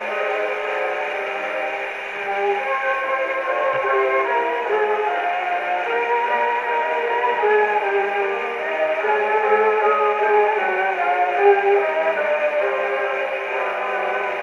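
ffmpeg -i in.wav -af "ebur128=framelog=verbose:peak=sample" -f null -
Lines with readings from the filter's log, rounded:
Integrated loudness:
  I:         -19.9 LUFS
  Threshold: -29.9 LUFS
Loudness range:
  LRA:         3.9 LU
  Threshold: -39.5 LUFS
  LRA low:   -21.6 LUFS
  LRA high:  -17.6 LUFS
Sample peak:
  Peak:       -2.6 dBFS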